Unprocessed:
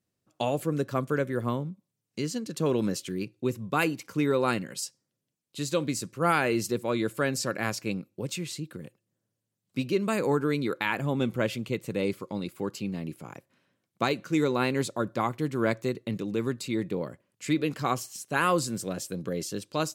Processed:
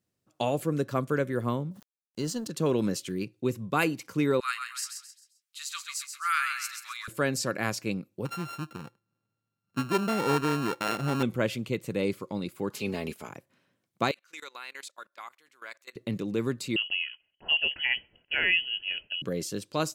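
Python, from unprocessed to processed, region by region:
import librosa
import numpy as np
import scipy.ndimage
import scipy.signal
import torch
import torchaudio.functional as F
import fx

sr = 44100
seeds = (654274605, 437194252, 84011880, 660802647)

y = fx.chain(x, sr, fx.law_mismatch(coded='A'),
    fx.peak_eq(hz=2300.0, db=-13.0, octaves=0.26),
    fx.sustainer(db_per_s=93.0), at=(1.71, 2.5))
y = fx.chain(y, sr, fx.cheby1_highpass(hz=1200.0, order=5),
    fx.echo_feedback(ms=132, feedback_pct=36, wet_db=-6.5), at=(4.4, 7.08))
y = fx.chain(y, sr, fx.sample_sort(block=32),
    fx.high_shelf(hz=4200.0, db=-9.0), at=(8.25, 11.23))
y = fx.spec_clip(y, sr, under_db=17, at=(12.7, 13.28), fade=0.02)
y = fx.comb(y, sr, ms=4.7, depth=0.51, at=(12.7, 13.28), fade=0.02)
y = fx.chain(y, sr, fx.highpass(hz=1500.0, slope=12),
    fx.high_shelf(hz=4500.0, db=-2.5),
    fx.level_steps(step_db=21), at=(14.11, 15.96))
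y = fx.chain(y, sr, fx.peak_eq(hz=1900.0, db=-14.5, octaves=0.34),
    fx.freq_invert(carrier_hz=3100), at=(16.76, 19.22))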